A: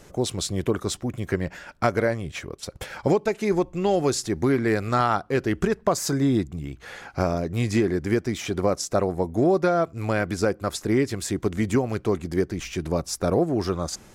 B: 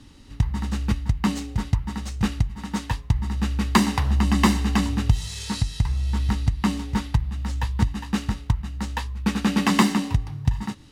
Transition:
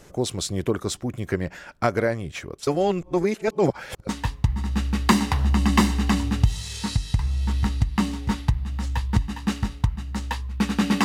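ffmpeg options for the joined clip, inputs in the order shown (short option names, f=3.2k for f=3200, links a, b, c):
-filter_complex "[0:a]apad=whole_dur=11.04,atrim=end=11.04,asplit=2[a][b];[a]atrim=end=2.672[c];[b]atrim=start=2.668:end=4.092,asetpts=PTS-STARTPTS,areverse[d];[1:a]atrim=start=2.748:end=9.7[e];[c][d]acrossfade=d=0.004:c1=hsin:c2=hsin[f];[f][e]acrossfade=d=0.004:c1=hsin:c2=hsin"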